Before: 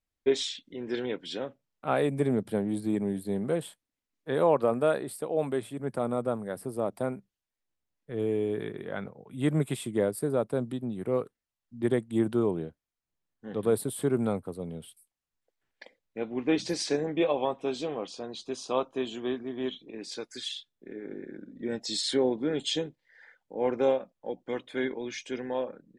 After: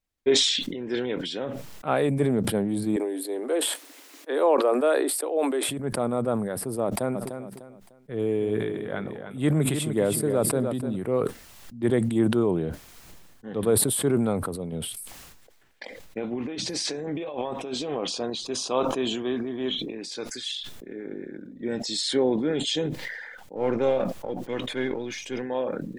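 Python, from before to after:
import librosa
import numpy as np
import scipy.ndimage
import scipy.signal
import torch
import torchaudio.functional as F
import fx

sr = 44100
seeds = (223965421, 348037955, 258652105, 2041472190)

y = fx.steep_highpass(x, sr, hz=270.0, slope=72, at=(2.96, 5.69))
y = fx.echo_feedback(y, sr, ms=300, feedback_pct=24, wet_db=-9.0, at=(7.14, 10.95), fade=0.02)
y = fx.over_compress(y, sr, threshold_db=-35.0, ratio=-1.0, at=(14.72, 18.3))
y = fx.halfwave_gain(y, sr, db=-3.0, at=(23.55, 25.41), fade=0.02)
y = fx.sustainer(y, sr, db_per_s=35.0)
y = y * 10.0 ** (2.5 / 20.0)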